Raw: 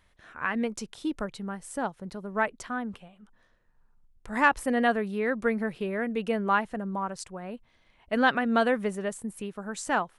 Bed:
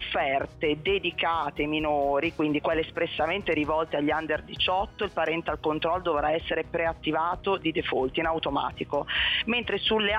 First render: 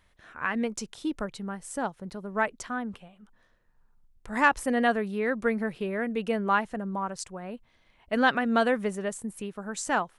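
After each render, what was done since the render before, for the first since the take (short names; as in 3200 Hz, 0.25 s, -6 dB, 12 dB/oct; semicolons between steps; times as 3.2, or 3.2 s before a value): dynamic EQ 6600 Hz, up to +4 dB, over -50 dBFS, Q 1.4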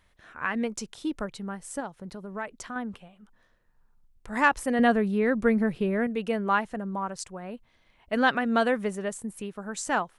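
1.8–2.76 compressor 2:1, threshold -35 dBFS; 4.79–6.07 low shelf 310 Hz +9.5 dB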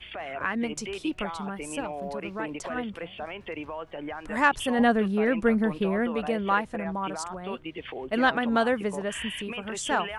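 add bed -10.5 dB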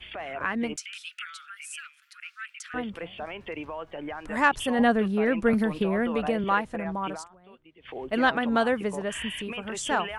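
0.76–2.74 steep high-pass 1300 Hz 96 dB/oct; 5.53–6.44 three-band squash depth 100%; 7.12–7.96 dip -18 dB, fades 0.16 s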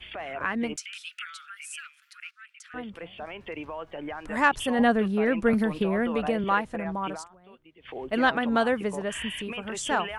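2.31–4.15 fade in equal-power, from -12 dB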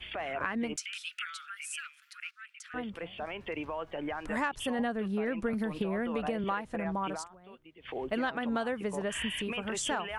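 compressor 6:1, threshold -29 dBFS, peak gain reduction 13 dB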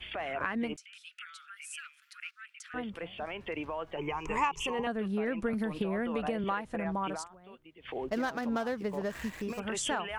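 0.77–2.49 fade in, from -15 dB; 3.97–4.87 ripple EQ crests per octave 0.75, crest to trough 17 dB; 8.07–9.6 median filter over 15 samples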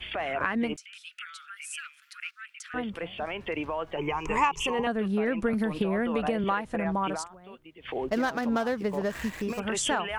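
gain +5 dB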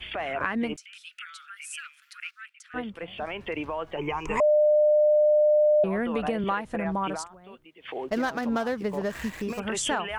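2.49–3.08 upward expander, over -47 dBFS; 4.4–5.84 bleep 602 Hz -16.5 dBFS; 7.65–8.11 HPF 350 Hz 6 dB/oct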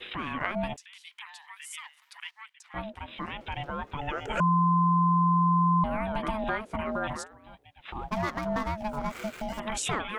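ring modulator 430 Hz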